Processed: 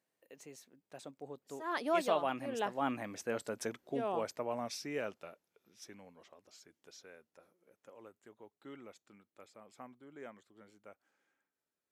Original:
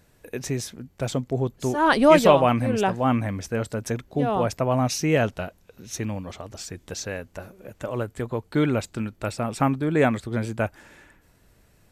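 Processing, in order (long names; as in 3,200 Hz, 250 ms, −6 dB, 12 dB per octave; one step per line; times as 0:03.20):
source passing by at 0:03.43, 28 m/s, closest 18 metres
high-pass filter 290 Hz 12 dB per octave
level −8 dB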